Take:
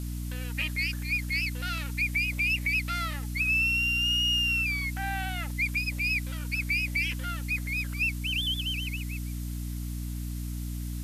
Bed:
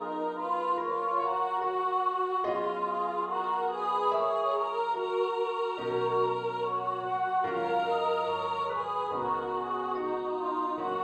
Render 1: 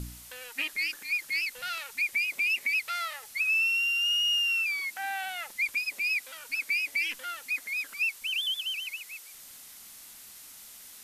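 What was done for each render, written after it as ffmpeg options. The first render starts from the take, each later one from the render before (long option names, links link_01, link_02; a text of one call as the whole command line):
ffmpeg -i in.wav -af "bandreject=frequency=60:width_type=h:width=4,bandreject=frequency=120:width_type=h:width=4,bandreject=frequency=180:width_type=h:width=4,bandreject=frequency=240:width_type=h:width=4,bandreject=frequency=300:width_type=h:width=4" out.wav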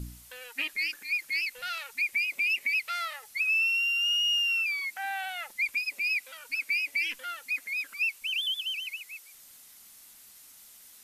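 ffmpeg -i in.wav -af "afftdn=noise_reduction=6:noise_floor=-49" out.wav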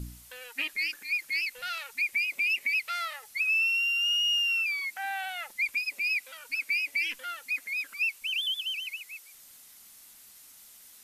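ffmpeg -i in.wav -af anull out.wav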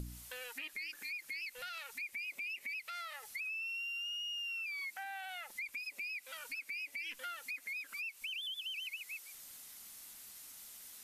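ffmpeg -i in.wav -af "alimiter=level_in=5.5dB:limit=-24dB:level=0:latency=1:release=149,volume=-5.5dB,acompressor=threshold=-42dB:ratio=3" out.wav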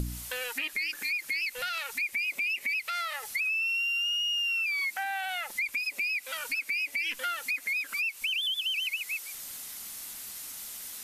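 ffmpeg -i in.wav -af "volume=11.5dB" out.wav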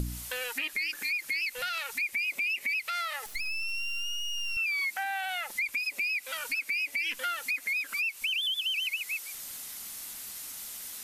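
ffmpeg -i in.wav -filter_complex "[0:a]asettb=1/sr,asplit=3[link_01][link_02][link_03];[link_01]atrim=end=3.264[link_04];[link_02]atrim=start=3.26:end=4.57,asetpts=PTS-STARTPTS,afade=type=in:duration=0.004:curve=qsin,afade=type=out:start_time=1.306:duration=0.004:curve=qsin,aeval=exprs='max(val(0),0)':channel_layout=same[link_05];[link_03]atrim=start=4.566[link_06];[link_04][link_05]acrossfade=duration=0.004:curve1=hsin:curve2=qsin[link_07];[link_07][link_06]acrossfade=duration=0.004:curve1=qsin:curve2=hsin" out.wav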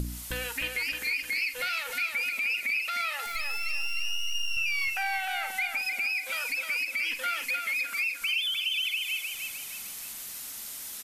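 ffmpeg -i in.wav -filter_complex "[0:a]asplit=2[link_01][link_02];[link_02]adelay=46,volume=-12.5dB[link_03];[link_01][link_03]amix=inputs=2:normalize=0,aecho=1:1:307|614|921|1228|1535:0.562|0.225|0.09|0.036|0.0144" out.wav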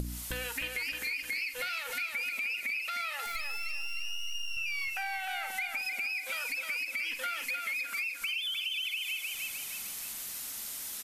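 ffmpeg -i in.wav -af "acompressor=threshold=-33dB:ratio=3" out.wav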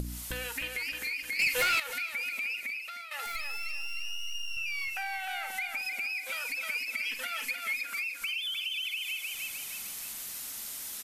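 ffmpeg -i in.wav -filter_complex "[0:a]asettb=1/sr,asplit=3[link_01][link_02][link_03];[link_01]atrim=end=1.394[link_04];[link_02]atrim=start=1.39:end=1.8,asetpts=PTS-STARTPTS,afade=type=in:duration=0.004:curve=qsin,afade=type=out:start_time=0.406:duration=0.004:curve=qsin,aeval=exprs='0.0841*sin(PI/2*2.24*val(0)/0.0841)':channel_layout=same[link_05];[link_03]atrim=start=1.796[link_06];[link_04][link_05]acrossfade=duration=0.004:curve1=hsin:curve2=qsin[link_07];[link_07][link_06]acrossfade=duration=0.004:curve1=qsin:curve2=hsin,asettb=1/sr,asplit=3[link_08][link_09][link_10];[link_08]atrim=end=6.604[link_11];[link_09]atrim=start=6.6:end=7.85,asetpts=PTS-STARTPTS,afade=type=in:duration=0.004:curve=qsin,afade=type=out:start_time=1.246:duration=0.004:curve=qsin,aecho=1:1:4.6:0.65,atrim=end_sample=55125[link_12];[link_10]atrim=start=7.846[link_13];[link_11][link_12]acrossfade=duration=0.004:curve1=hsin:curve2=qsin[link_14];[link_14][link_13]acrossfade=duration=0.004:curve1=qsin:curve2=hsin,asplit=2[link_15][link_16];[link_15]atrim=end=3.11,asetpts=PTS-STARTPTS,afade=type=out:start_time=2.5:duration=0.61:silence=0.266073[link_17];[link_16]atrim=start=3.11,asetpts=PTS-STARTPTS,afade=type=in:duration=0.004:curve=hsin:silence=0.266073[link_18];[link_17][link_18]concat=n=2:v=0:a=1" out.wav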